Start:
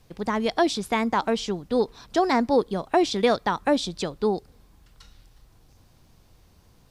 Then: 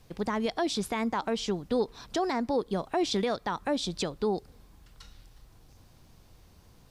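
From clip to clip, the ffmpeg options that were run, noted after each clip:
-af "alimiter=limit=-18.5dB:level=0:latency=1:release=206"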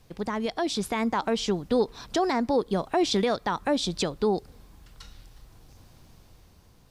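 -af "dynaudnorm=f=150:g=11:m=4dB"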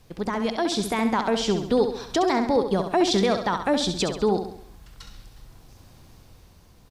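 -af "aecho=1:1:67|134|201|268|335|402:0.398|0.191|0.0917|0.044|0.0211|0.0101,volume=2.5dB"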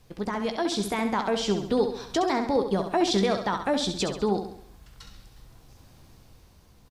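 -filter_complex "[0:a]asplit=2[a][b];[b]adelay=15,volume=-11dB[c];[a][c]amix=inputs=2:normalize=0,volume=-3dB"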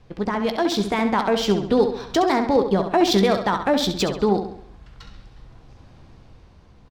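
-af "adynamicsmooth=sensitivity=5:basefreq=3.7k,volume=6dB"

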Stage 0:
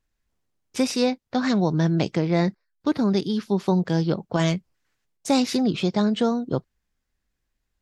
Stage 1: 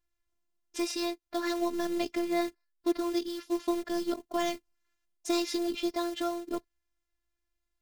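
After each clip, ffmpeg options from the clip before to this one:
-af "acrusher=bits=5:mode=log:mix=0:aa=0.000001,equalizer=f=82:w=0.85:g=-5,afftfilt=real='hypot(re,im)*cos(PI*b)':imag='0':win_size=512:overlap=0.75,volume=-3dB"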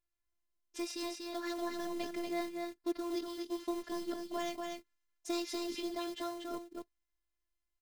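-af "aecho=1:1:239:0.631,volume=-7.5dB"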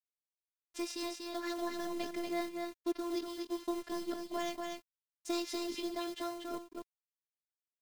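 -af "aeval=exprs='sgn(val(0))*max(abs(val(0))-0.00112,0)':c=same,volume=1dB"

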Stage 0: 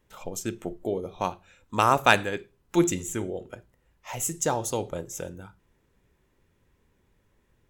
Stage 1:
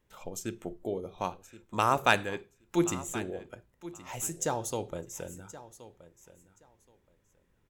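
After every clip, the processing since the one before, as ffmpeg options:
-af "aecho=1:1:1074|2148:0.15|0.0269,volume=-5dB"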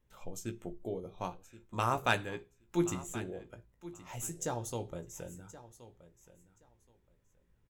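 -filter_complex "[0:a]lowshelf=f=130:g=9,asplit=2[a][b];[b]adelay=17,volume=-8.5dB[c];[a][c]amix=inputs=2:normalize=0,volume=-6.5dB"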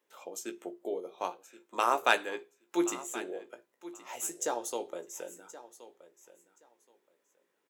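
-af "highpass=f=330:w=0.5412,highpass=f=330:w=1.3066,volume=4.5dB"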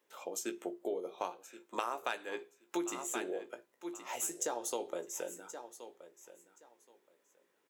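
-af "acompressor=threshold=-34dB:ratio=12,volume=2dB"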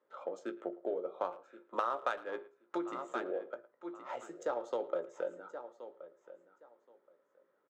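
-filter_complex "[0:a]highpass=f=120:w=0.5412,highpass=f=120:w=1.3066,equalizer=f=130:t=q:w=4:g=4,equalizer=f=560:t=q:w=4:g=9,equalizer=f=1.3k:t=q:w=4:g=10,equalizer=f=2.6k:t=q:w=4:g=-8,equalizer=f=5.8k:t=q:w=4:g=-7,lowpass=f=7.3k:w=0.5412,lowpass=f=7.3k:w=1.3066,adynamicsmooth=sensitivity=3.5:basefreq=2.5k,asplit=2[a][b];[b]adelay=110,highpass=300,lowpass=3.4k,asoftclip=type=hard:threshold=-24dB,volume=-19dB[c];[a][c]amix=inputs=2:normalize=0,volume=-2dB"

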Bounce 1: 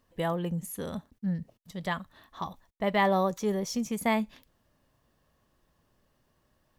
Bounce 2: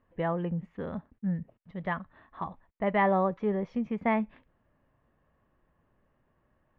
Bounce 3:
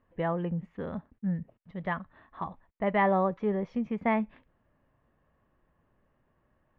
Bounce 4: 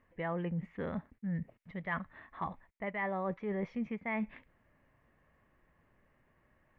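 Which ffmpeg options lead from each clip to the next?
-af "lowpass=f=2.3k:w=0.5412,lowpass=f=2.3k:w=1.3066"
-af anull
-af "equalizer=f=2.1k:w=2.3:g=10,areverse,acompressor=threshold=-32dB:ratio=16,areverse"

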